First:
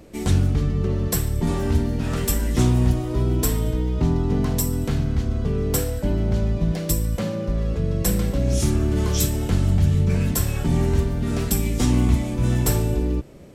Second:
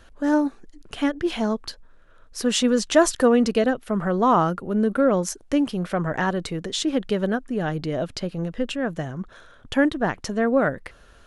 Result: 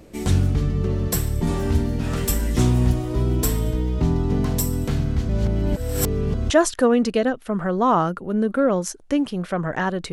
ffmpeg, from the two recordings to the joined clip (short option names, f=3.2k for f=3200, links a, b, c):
-filter_complex "[0:a]apad=whole_dur=10.12,atrim=end=10.12,asplit=2[a][b];[a]atrim=end=5.292[c];[b]atrim=start=5.288:end=6.502,asetpts=PTS-STARTPTS,areverse[d];[1:a]atrim=start=2.908:end=6.53[e];[c][d]acrossfade=d=0.004:c1=hsin:c2=hsin[f];[f][e]acrossfade=d=0.004:c1=hsin:c2=hsin"